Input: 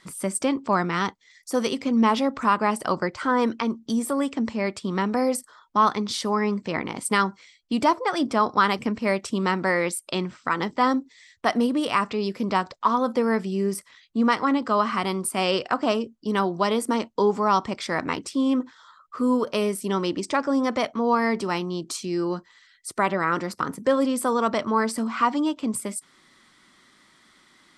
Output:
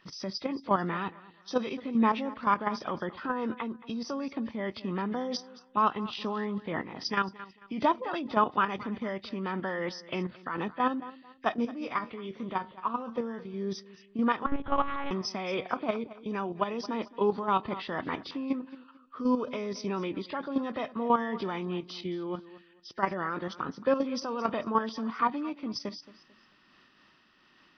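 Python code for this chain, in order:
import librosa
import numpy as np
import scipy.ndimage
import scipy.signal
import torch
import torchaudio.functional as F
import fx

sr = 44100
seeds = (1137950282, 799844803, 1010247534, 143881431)

y = fx.freq_compress(x, sr, knee_hz=1600.0, ratio=1.5)
y = fx.level_steps(y, sr, step_db=10)
y = fx.comb_fb(y, sr, f0_hz=77.0, decay_s=0.23, harmonics='all', damping=0.0, mix_pct=60, at=(11.54, 13.54))
y = fx.echo_feedback(y, sr, ms=222, feedback_pct=31, wet_db=-18)
y = fx.lpc_monotone(y, sr, seeds[0], pitch_hz=280.0, order=8, at=(14.46, 15.11))
y = fx.am_noise(y, sr, seeds[1], hz=5.7, depth_pct=55)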